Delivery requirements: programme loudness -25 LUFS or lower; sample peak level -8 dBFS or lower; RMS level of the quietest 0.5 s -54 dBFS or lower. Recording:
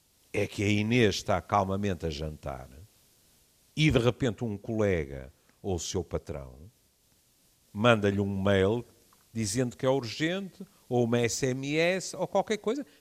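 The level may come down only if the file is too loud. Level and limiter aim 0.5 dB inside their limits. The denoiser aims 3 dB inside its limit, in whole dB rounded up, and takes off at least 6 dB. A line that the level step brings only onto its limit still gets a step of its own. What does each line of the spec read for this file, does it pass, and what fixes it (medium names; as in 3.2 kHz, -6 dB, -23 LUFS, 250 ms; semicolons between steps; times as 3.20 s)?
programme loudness -28.5 LUFS: pass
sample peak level -9.0 dBFS: pass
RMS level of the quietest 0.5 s -67 dBFS: pass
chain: none needed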